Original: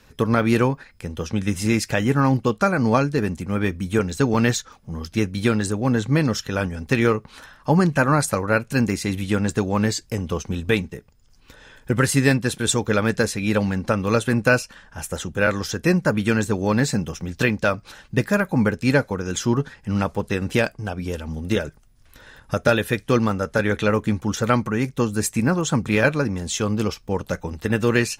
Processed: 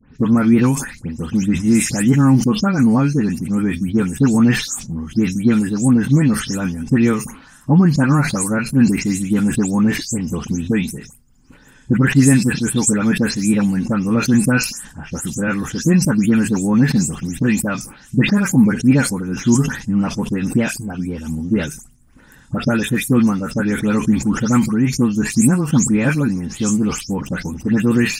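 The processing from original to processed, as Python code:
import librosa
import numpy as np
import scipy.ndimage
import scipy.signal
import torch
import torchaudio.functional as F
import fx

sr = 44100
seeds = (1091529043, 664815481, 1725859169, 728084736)

y = fx.spec_delay(x, sr, highs='late', ms=185)
y = fx.graphic_eq_10(y, sr, hz=(125, 250, 500, 4000, 8000), db=(6, 10, -6, -8, 9))
y = fx.sustainer(y, sr, db_per_s=100.0)
y = y * 10.0 ** (-1.0 / 20.0)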